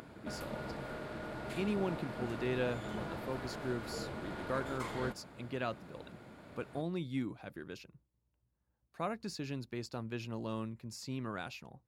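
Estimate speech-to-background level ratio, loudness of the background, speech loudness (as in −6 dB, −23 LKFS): 2.0 dB, −43.0 LKFS, −41.0 LKFS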